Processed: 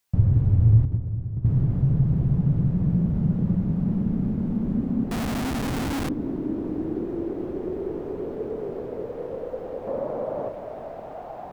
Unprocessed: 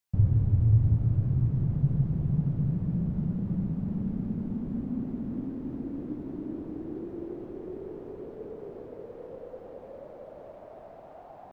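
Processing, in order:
0:09.87–0:10.49: octave-band graphic EQ 125/250/500/1,000 Hz +7/+7/+4/+8 dB
in parallel at 0 dB: downward compressor 5 to 1, threshold −35 dBFS, peak gain reduction 16.5 dB
on the sum: mains-hum notches 50/100/150/200/250/300/350 Hz
0:00.85–0:01.45: noise gate −19 dBFS, range −18 dB
feedback echo with a low-pass in the loop 198 ms, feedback 76%, low-pass 1,000 Hz, level −12.5 dB
0:05.11–0:06.09: comparator with hysteresis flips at −36.5 dBFS
level +4 dB

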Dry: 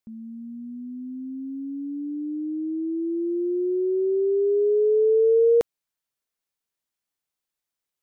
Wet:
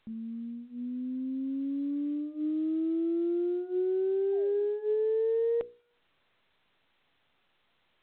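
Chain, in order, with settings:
downward compressor 6 to 1, threshold −27 dBFS, peak gain reduction 10.5 dB
sound drawn into the spectrogram fall, 0:04.32–0:04.66, 320–820 Hz −50 dBFS
harmonic generator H 4 −32 dB, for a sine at −23 dBFS
mains-hum notches 60/120/180/240/300/360/420/480 Hz
A-law companding 64 kbit/s 8,000 Hz

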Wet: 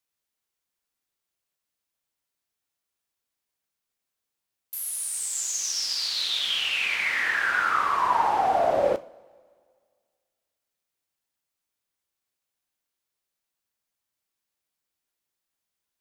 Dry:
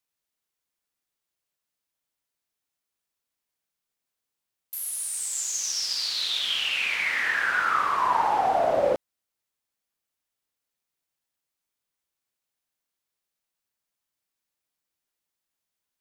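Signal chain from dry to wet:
coupled-rooms reverb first 0.35 s, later 1.9 s, from −18 dB, DRR 11.5 dB

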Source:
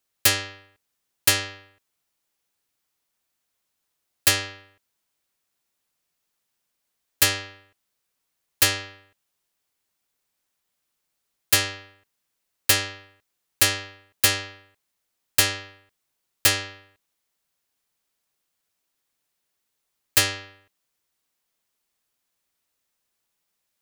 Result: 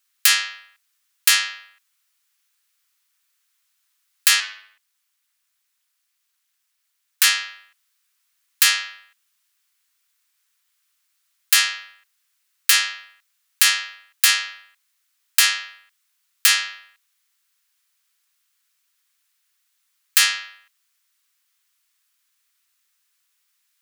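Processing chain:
high-pass filter 1,200 Hz 24 dB per octave
0:04.40–0:07.24: ring modulation 140 Hz
boost into a limiter +9 dB
level −1 dB

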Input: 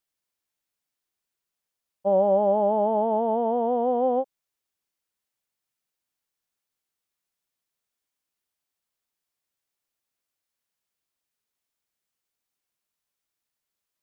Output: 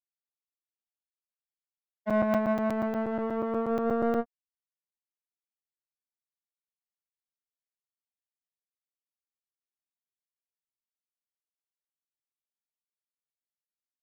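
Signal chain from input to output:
vocoder with a gliding carrier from G3, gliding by +10 semitones
power curve on the samples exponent 2
regular buffer underruns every 0.12 s, samples 256, zero, from 0:00.66

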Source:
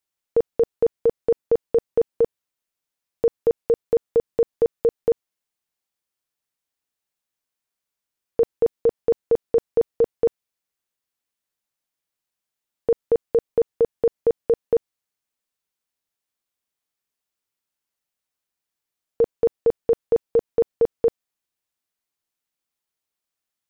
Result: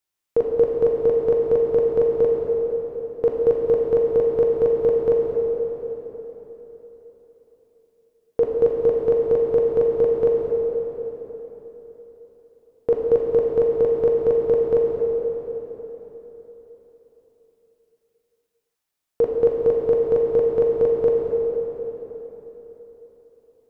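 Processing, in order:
dense smooth reverb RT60 4.1 s, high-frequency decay 0.75×, DRR −2 dB

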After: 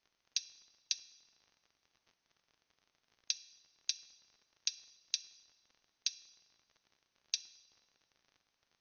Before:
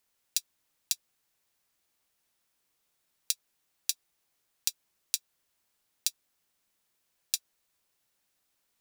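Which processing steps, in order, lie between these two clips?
surface crackle 38 per second −49 dBFS
linear-phase brick-wall low-pass 6,500 Hz
coupled-rooms reverb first 0.99 s, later 2.5 s, DRR 14.5 dB
level −2 dB

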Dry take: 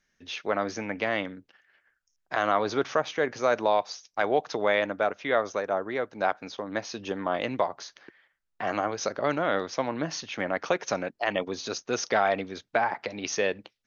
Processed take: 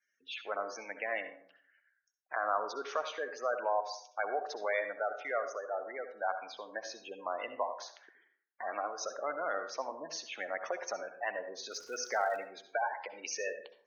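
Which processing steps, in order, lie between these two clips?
gate on every frequency bin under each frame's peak −15 dB strong
high-pass filter 650 Hz 12 dB per octave
0:11.68–0:12.36: surface crackle 230 per second −42 dBFS
convolution reverb RT60 0.60 s, pre-delay 57 ms, DRR 8.5 dB
level −5.5 dB

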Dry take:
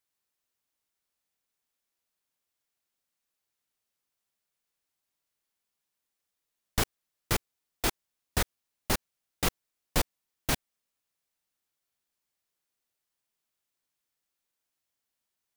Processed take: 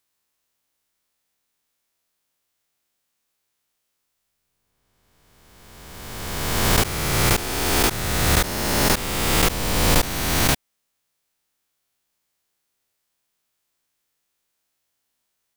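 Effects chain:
peak hold with a rise ahead of every peak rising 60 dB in 2.13 s
level +5.5 dB

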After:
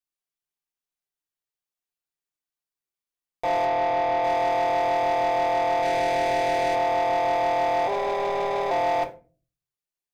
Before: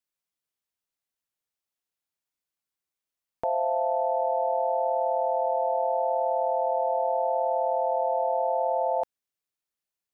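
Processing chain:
0:05.82–0:06.75: running median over 41 samples
mains-hum notches 50/100/150/200/250/300/350/400/450/500 Hz
brickwall limiter −22 dBFS, peak gain reduction 5.5 dB
leveller curve on the samples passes 3
0:03.65–0:04.24: high-frequency loss of the air 110 metres
0:07.87–0:08.71: ring modulation 120 Hz
convolution reverb RT60 0.35 s, pre-delay 3 ms, DRR 2.5 dB

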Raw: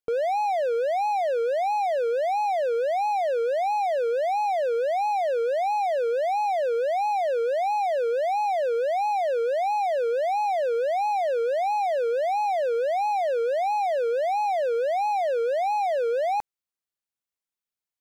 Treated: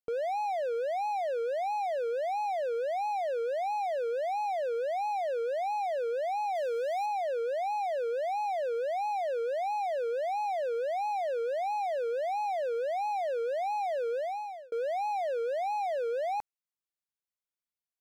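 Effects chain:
0:06.55–0:07.06: high-shelf EQ 3,300 Hz +7 dB
0:14.15–0:14.72: fade out
level −7 dB

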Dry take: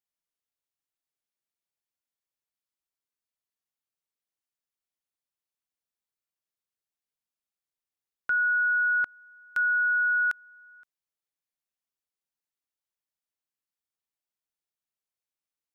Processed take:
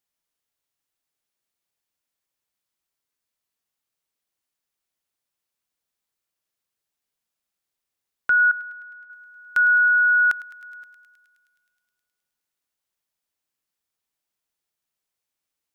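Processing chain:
0:08.51–0:09.10: gate with flip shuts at −28 dBFS, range −39 dB
feedback echo with a high-pass in the loop 105 ms, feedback 84%, high-pass 1,100 Hz, level −16 dB
level +7.5 dB

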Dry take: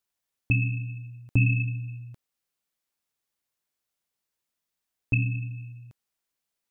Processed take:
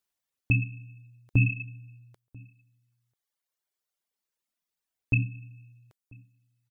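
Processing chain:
reverb reduction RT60 2 s
slap from a distant wall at 170 metres, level −25 dB

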